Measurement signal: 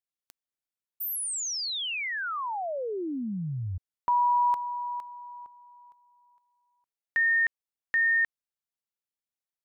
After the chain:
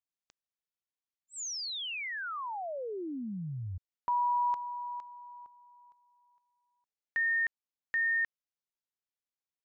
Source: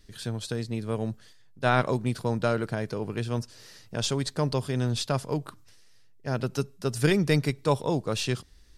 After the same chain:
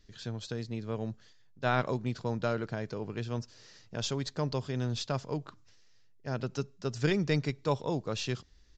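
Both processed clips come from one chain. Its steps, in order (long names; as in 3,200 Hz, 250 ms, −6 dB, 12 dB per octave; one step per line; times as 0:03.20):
downsampling to 16,000 Hz
level −5.5 dB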